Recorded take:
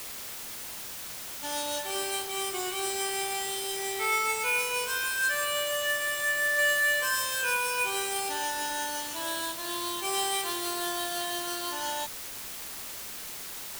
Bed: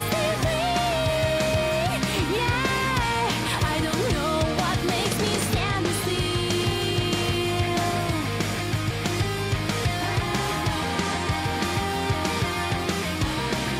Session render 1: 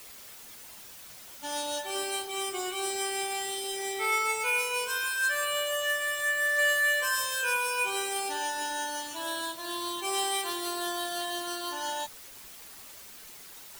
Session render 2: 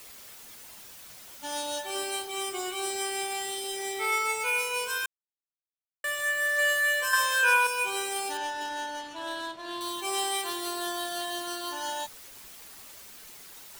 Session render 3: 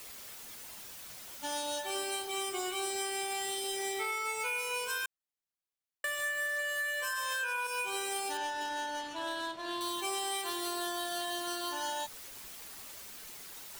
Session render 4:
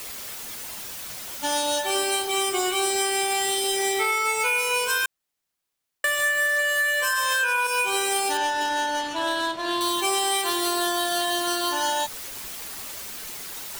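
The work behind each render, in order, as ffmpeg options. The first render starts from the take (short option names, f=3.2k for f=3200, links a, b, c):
-af "afftdn=nr=9:nf=-40"
-filter_complex "[0:a]asettb=1/sr,asplit=3[a][b][c];[a]atrim=end=7.134[d];[b]atrim=start=7.13:end=7.67,asetpts=PTS-STARTPTS,afade=t=in:d=0.004:c=qsin,afade=t=out:st=0.536:d=0.004:c=qsin,equalizer=f=1.3k:t=o:w=2.4:g=8.5[e];[c]atrim=start=7.666[f];[d][e]acrossfade=d=0.004:c1=hsin:c2=qsin[g];[g][f]acrossfade=d=0.004:c1=qsin:c2=hsin,asettb=1/sr,asplit=3[h][i][j];[h]atrim=end=8.374[k];[i]atrim=start=8.37:end=9.81,asetpts=PTS-STARTPTS,afade=t=in:d=0.004:c=qsin,afade=t=out:st=1.436:d=0.004:c=qsin,adynamicsmooth=sensitivity=5.5:basefreq=2.9k[l];[j]atrim=start=9.806[m];[k][l]acrossfade=d=0.004:c1=hsin:c2=qsin[n];[n][m]acrossfade=d=0.004:c1=qsin:c2=hsin,asplit=3[o][p][q];[o]atrim=end=5.06,asetpts=PTS-STARTPTS,afade=t=out:st=5.056:d=0.004:c=hsin[r];[p]atrim=start=5.06:end=6.04,asetpts=PTS-STARTPTS,volume=0[s];[q]atrim=start=6.04,asetpts=PTS-STARTPTS,afade=t=in:d=0.004:c=hsin[t];[r][s][t]concat=n=3:v=0:a=1"
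-af "alimiter=limit=-20dB:level=0:latency=1:release=91,acompressor=threshold=-32dB:ratio=6"
-af "volume=11.5dB"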